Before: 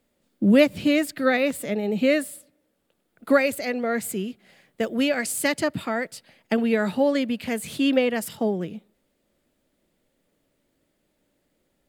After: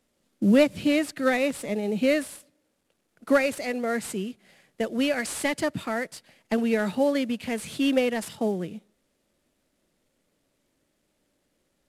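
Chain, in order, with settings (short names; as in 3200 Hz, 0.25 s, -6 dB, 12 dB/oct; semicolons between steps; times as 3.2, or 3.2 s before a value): CVSD 64 kbps; gain -2 dB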